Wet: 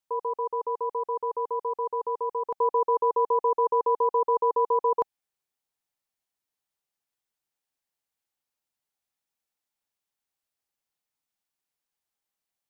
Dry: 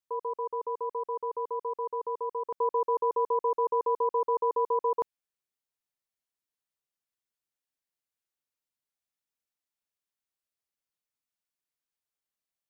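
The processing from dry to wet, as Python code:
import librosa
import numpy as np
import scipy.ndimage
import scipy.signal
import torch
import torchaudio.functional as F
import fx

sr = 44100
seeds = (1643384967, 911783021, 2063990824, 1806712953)

y = fx.peak_eq(x, sr, hz=810.0, db=6.0, octaves=0.28)
y = y * 10.0 ** (3.0 / 20.0)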